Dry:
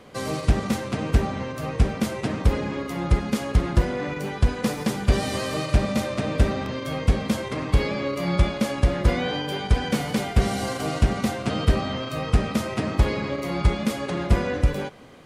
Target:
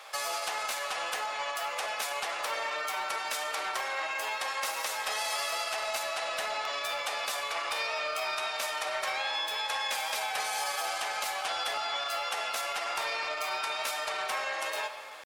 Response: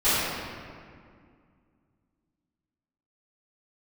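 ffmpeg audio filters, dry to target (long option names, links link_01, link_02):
-filter_complex "[0:a]highpass=frequency=680:width=0.5412,highpass=frequency=680:width=1.3066,highshelf=frequency=2800:gain=3,acompressor=threshold=-34dB:ratio=4,asoftclip=type=tanh:threshold=-27dB,asetrate=48091,aresample=44100,atempo=0.917004,asplit=2[link_01][link_02];[1:a]atrim=start_sample=2205[link_03];[link_02][link_03]afir=irnorm=-1:irlink=0,volume=-25dB[link_04];[link_01][link_04]amix=inputs=2:normalize=0,volume=4dB"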